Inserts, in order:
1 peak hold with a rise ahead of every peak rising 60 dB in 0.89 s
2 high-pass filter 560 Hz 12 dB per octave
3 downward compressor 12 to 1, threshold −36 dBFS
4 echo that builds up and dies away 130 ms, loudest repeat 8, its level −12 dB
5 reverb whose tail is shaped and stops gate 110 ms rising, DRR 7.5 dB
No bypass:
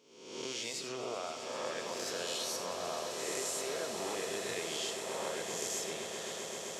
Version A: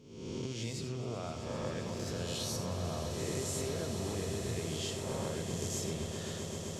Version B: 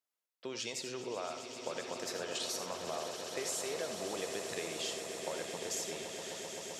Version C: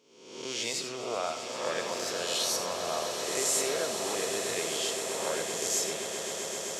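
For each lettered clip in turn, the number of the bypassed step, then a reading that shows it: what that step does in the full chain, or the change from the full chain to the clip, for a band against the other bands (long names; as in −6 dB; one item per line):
2, 125 Hz band +22.0 dB
1, 125 Hz band +2.0 dB
3, average gain reduction 4.5 dB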